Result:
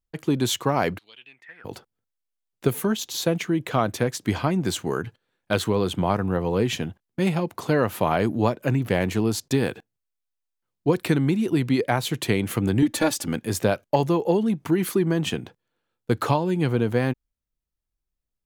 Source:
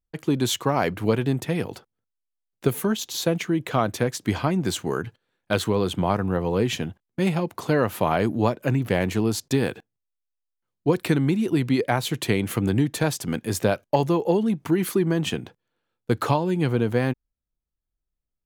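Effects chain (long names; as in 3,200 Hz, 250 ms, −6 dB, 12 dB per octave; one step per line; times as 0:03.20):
0:00.97–0:01.64: resonant band-pass 4,300 Hz → 1,400 Hz, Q 8.9
0:12.82–0:13.28: comb filter 3.5 ms, depth 96%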